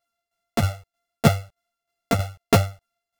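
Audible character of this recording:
a buzz of ramps at a fixed pitch in blocks of 64 samples
tremolo saw down 3.2 Hz, depth 70%
a shimmering, thickened sound

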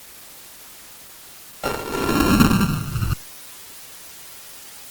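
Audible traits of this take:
a buzz of ramps at a fixed pitch in blocks of 32 samples
tremolo triangle 0.95 Hz, depth 85%
a quantiser's noise floor 8 bits, dither triangular
Opus

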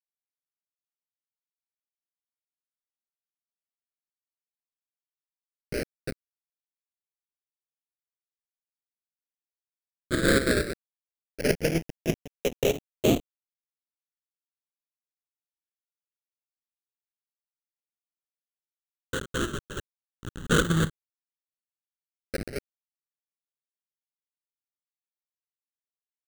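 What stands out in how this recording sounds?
a quantiser's noise floor 6 bits, dither none
chopped level 4.3 Hz, depth 60%, duty 65%
aliases and images of a low sample rate 1,000 Hz, jitter 20%
phaser sweep stages 8, 0.088 Hz, lowest notch 670–1,700 Hz

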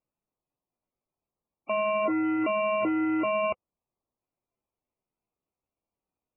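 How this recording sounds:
aliases and images of a low sample rate 1,700 Hz, jitter 0%
MP3

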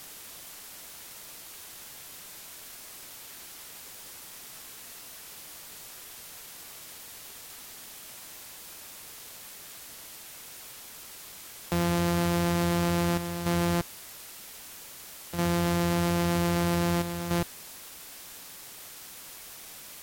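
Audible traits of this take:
a buzz of ramps at a fixed pitch in blocks of 256 samples
chopped level 0.52 Hz, depth 60%, duty 85%
a quantiser's noise floor 8 bits, dither triangular
Ogg Vorbis

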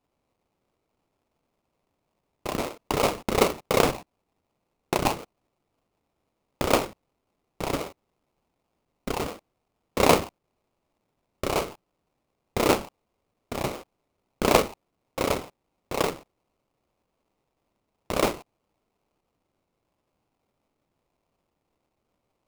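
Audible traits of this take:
phaser sweep stages 6, 2.7 Hz, lowest notch 480–2,000 Hz
aliases and images of a low sample rate 1,700 Hz, jitter 20%

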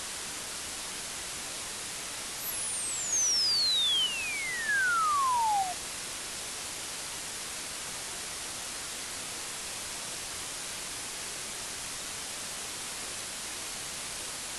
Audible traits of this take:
chopped level 0.64 Hz, depth 60%, duty 60%
a quantiser's noise floor 6 bits, dither triangular
AAC

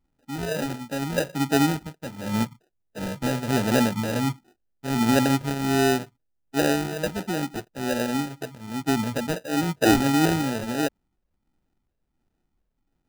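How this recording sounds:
phaser sweep stages 12, 1.4 Hz, lowest notch 340–1,200 Hz
aliases and images of a low sample rate 1,100 Hz, jitter 0%

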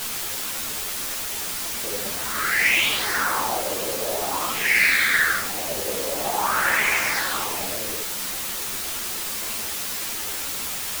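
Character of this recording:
phaser sweep stages 8, 0.34 Hz, lowest notch 800–4,700 Hz
a quantiser's noise floor 6 bits, dither triangular
a shimmering, thickened sound

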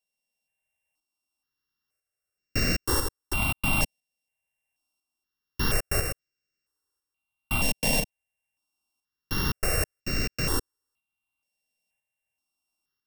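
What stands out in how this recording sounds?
a buzz of ramps at a fixed pitch in blocks of 16 samples
tremolo saw up 1 Hz, depth 50%
notches that jump at a steady rate 2.1 Hz 350–3,300 Hz

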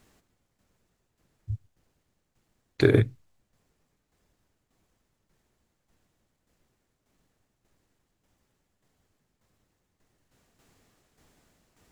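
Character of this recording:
tremolo saw down 1.7 Hz, depth 60%

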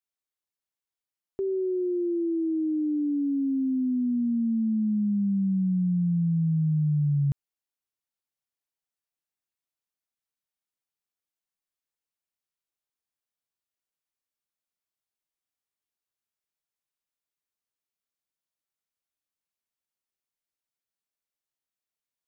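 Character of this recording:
background noise floor −92 dBFS
spectral slope −6.0 dB per octave

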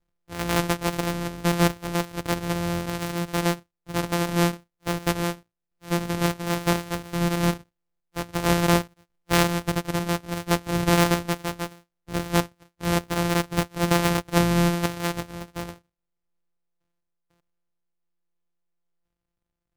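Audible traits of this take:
a buzz of ramps at a fixed pitch in blocks of 256 samples
sample-and-hold tremolo
MP3

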